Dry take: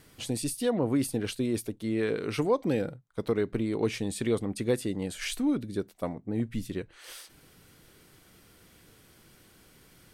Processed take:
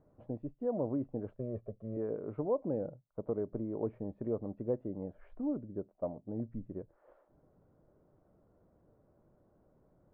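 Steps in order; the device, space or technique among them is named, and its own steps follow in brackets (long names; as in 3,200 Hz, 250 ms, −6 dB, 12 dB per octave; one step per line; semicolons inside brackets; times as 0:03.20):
0:01.37–0:01.97: comb filter 1.7 ms, depth 87%
under water (low-pass filter 1,000 Hz 24 dB per octave; parametric band 600 Hz +10.5 dB 0.29 octaves)
level −8.5 dB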